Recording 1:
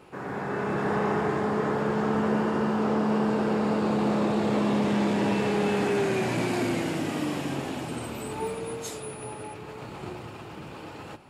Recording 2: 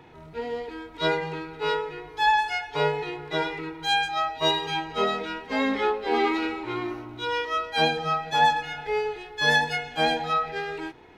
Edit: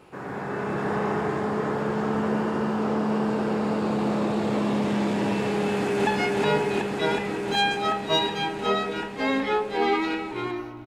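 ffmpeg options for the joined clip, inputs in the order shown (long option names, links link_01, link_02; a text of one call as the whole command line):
ffmpeg -i cue0.wav -i cue1.wav -filter_complex "[0:a]apad=whole_dur=10.86,atrim=end=10.86,atrim=end=6.072[link_01];[1:a]atrim=start=2.388:end=7.18[link_02];[link_01][link_02]acrossfade=duration=0.004:curve1=hsin:curve2=hsin,asplit=2[link_03][link_04];[link_04]afade=type=in:start_time=5.62:duration=0.01,afade=type=out:start_time=6.07:duration=0.01,aecho=0:1:370|740|1110|1480|1850|2220|2590|2960|3330|3700|4070|4440:0.891251|0.757563|0.643929|0.547339|0.465239|0.395453|0.336135|0.285715|0.242857|0.206429|0.175464|0.149145[link_05];[link_03][link_05]amix=inputs=2:normalize=0" out.wav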